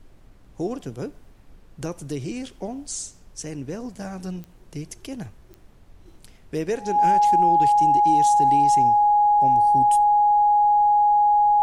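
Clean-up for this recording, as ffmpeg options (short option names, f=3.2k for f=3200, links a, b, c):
-af "adeclick=t=4,bandreject=f=830:w=30,agate=range=-21dB:threshold=-42dB"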